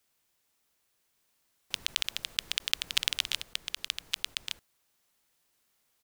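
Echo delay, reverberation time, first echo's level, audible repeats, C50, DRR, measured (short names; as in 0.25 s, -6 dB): 1.166 s, none, -4.5 dB, 1, none, none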